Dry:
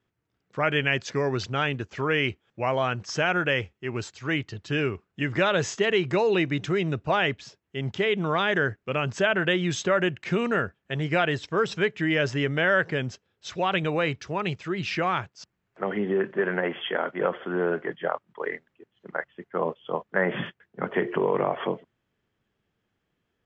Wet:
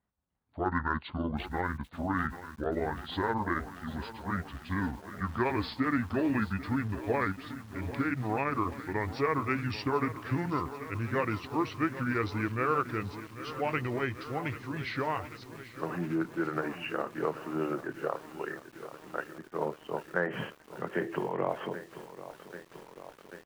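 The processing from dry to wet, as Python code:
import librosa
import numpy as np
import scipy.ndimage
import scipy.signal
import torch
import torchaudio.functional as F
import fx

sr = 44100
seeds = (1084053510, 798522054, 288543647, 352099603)

y = fx.pitch_glide(x, sr, semitones=-9.5, runs='ending unshifted')
y = fx.cheby_harmonics(y, sr, harmonics=(7,), levels_db=(-40,), full_scale_db=-9.5)
y = fx.echo_crushed(y, sr, ms=788, feedback_pct=80, bits=7, wet_db=-13.5)
y = y * librosa.db_to_amplitude(-5.0)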